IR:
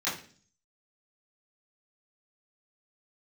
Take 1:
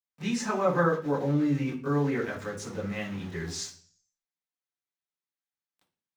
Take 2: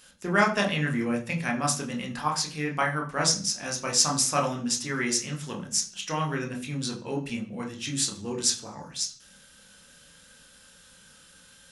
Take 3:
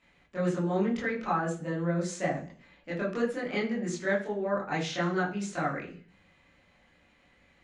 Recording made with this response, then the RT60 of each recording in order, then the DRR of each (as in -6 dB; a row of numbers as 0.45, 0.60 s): 1; 0.45, 0.45, 0.45 s; -12.0, 0.5, -6.5 dB